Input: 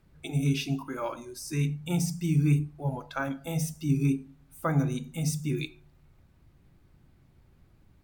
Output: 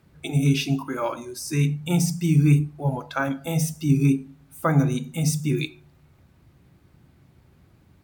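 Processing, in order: high-pass 72 Hz; trim +6.5 dB

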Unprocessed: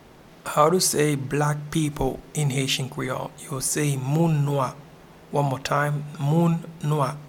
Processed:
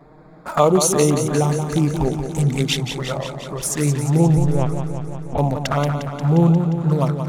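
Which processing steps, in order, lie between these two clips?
local Wiener filter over 15 samples; peaking EQ 100 Hz -8 dB 0.29 oct; touch-sensitive flanger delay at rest 7.3 ms, full sweep at -18 dBFS; 4.37–5.38 s: LPC vocoder at 8 kHz pitch kept; modulated delay 177 ms, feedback 70%, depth 75 cents, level -8 dB; trim +6 dB

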